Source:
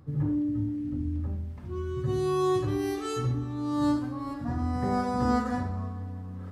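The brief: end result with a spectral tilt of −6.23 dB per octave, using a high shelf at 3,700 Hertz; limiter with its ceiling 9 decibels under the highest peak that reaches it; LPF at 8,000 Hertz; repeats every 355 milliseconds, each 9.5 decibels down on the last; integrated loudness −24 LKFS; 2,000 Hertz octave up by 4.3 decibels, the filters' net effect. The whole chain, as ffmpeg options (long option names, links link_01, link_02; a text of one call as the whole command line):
ffmpeg -i in.wav -af "lowpass=8000,equalizer=frequency=2000:width_type=o:gain=7.5,highshelf=frequency=3700:gain=-7,alimiter=limit=-23.5dB:level=0:latency=1,aecho=1:1:355|710|1065|1420:0.335|0.111|0.0365|0.012,volume=8dB" out.wav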